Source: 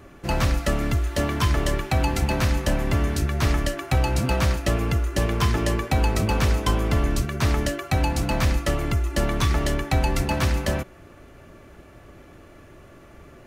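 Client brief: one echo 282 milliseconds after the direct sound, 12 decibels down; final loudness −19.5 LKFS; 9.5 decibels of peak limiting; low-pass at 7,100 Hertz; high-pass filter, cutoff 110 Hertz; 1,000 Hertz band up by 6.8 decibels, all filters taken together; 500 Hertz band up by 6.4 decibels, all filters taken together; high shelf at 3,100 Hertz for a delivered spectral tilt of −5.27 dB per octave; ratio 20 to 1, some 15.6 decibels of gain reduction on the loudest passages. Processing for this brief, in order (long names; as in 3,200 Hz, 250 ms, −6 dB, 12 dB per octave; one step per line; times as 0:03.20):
high-pass filter 110 Hz
low-pass filter 7,100 Hz
parametric band 500 Hz +6 dB
parametric band 1,000 Hz +7 dB
high-shelf EQ 3,100 Hz −4 dB
downward compressor 20 to 1, threshold −32 dBFS
brickwall limiter −29.5 dBFS
single-tap delay 282 ms −12 dB
level +19.5 dB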